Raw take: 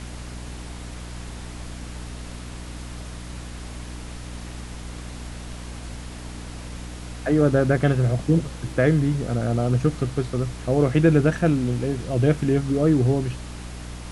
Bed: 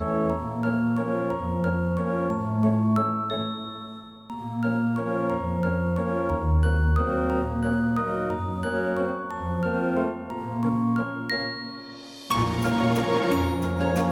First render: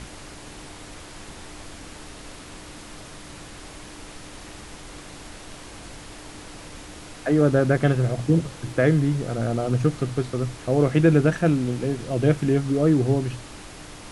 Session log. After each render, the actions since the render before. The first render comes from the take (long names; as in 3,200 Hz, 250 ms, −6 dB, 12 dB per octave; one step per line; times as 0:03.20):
mains-hum notches 60/120/180/240 Hz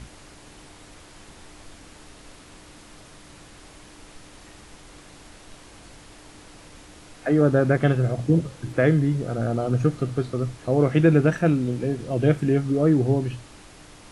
noise reduction from a noise print 6 dB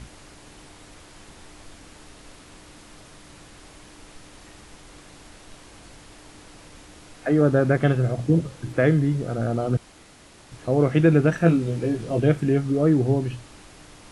0:09.77–0:10.52: fill with room tone
0:11.39–0:12.20: double-tracking delay 18 ms −3.5 dB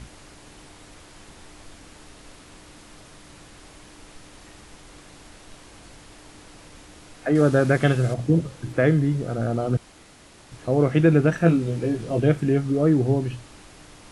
0:07.35–0:08.14: high-shelf EQ 2,100 Hz +8.5 dB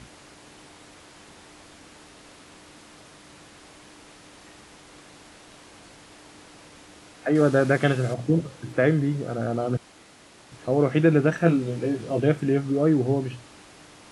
high-pass filter 170 Hz 6 dB per octave
high-shelf EQ 9,300 Hz −5 dB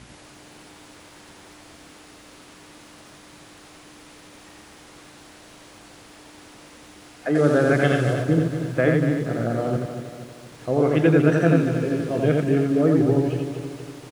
single-tap delay 87 ms −3 dB
feedback echo at a low word length 236 ms, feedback 55%, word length 8 bits, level −9 dB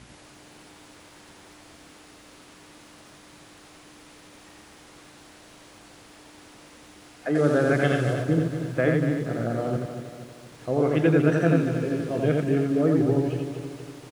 level −3 dB